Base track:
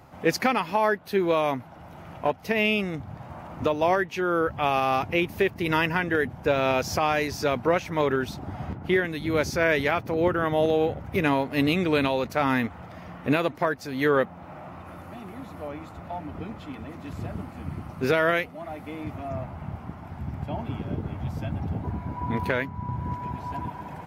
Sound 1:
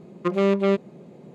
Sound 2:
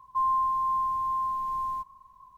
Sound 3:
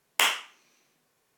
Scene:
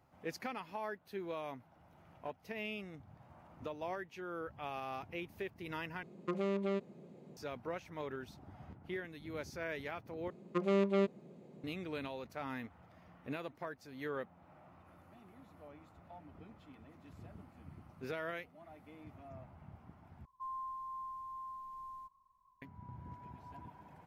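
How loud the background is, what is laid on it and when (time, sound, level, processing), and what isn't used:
base track −19 dB
0:06.03: overwrite with 1 −10 dB + downward compressor 2.5 to 1, threshold −22 dBFS
0:10.30: overwrite with 1 −10.5 dB
0:20.25: overwrite with 2 −17.5 dB
not used: 3

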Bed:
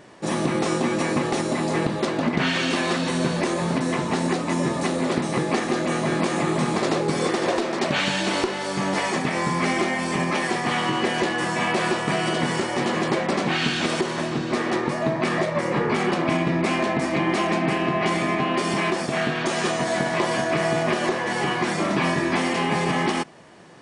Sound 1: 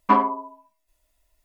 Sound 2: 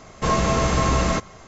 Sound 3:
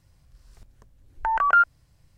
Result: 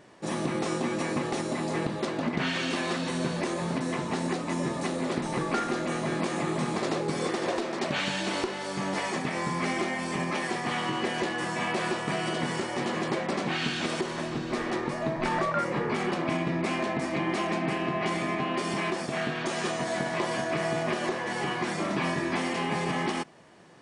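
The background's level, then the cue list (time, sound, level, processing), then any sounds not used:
bed −6.5 dB
0:04.01: mix in 3 −16.5 dB + feedback echo with a low-pass in the loop 72 ms, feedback 83%, level −5 dB
0:14.01: mix in 3 −2.5 dB + downward compressor, threshold −26 dBFS
not used: 1, 2

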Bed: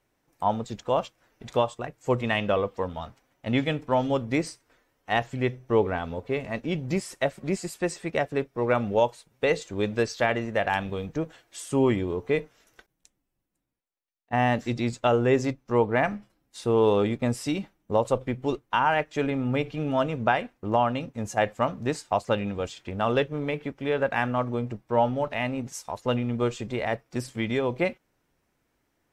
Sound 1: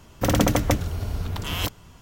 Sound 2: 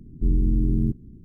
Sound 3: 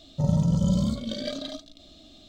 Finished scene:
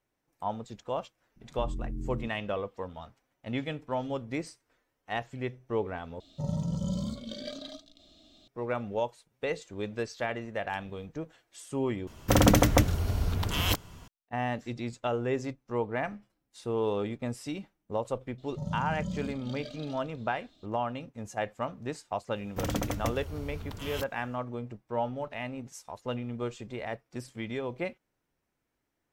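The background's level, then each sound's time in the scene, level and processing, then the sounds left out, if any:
bed −8.5 dB
0:01.36: mix in 2 −15 dB
0:06.20: overwrite with 3 −7 dB + low-shelf EQ 210 Hz −3.5 dB
0:12.07: overwrite with 1 −0.5 dB
0:18.38: mix in 3 −12.5 dB
0:22.35: mix in 1 −11.5 dB

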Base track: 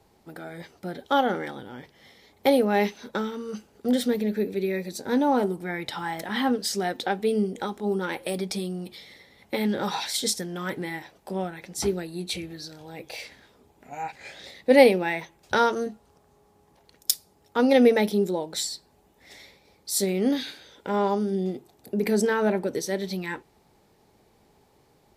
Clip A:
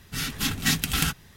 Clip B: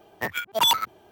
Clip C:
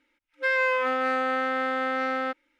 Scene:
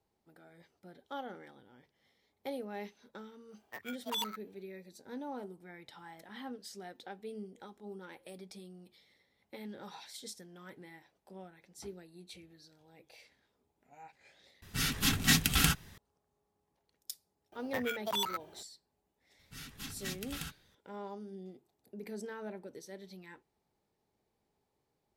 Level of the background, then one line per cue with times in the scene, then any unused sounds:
base track −20 dB
0:03.51: mix in B −16 dB + low-shelf EQ 400 Hz −11.5 dB
0:14.62: overwrite with A −2.5 dB
0:17.52: mix in B −3.5 dB + downward compressor 3 to 1, threshold −31 dBFS
0:19.39: mix in A −18 dB
not used: C

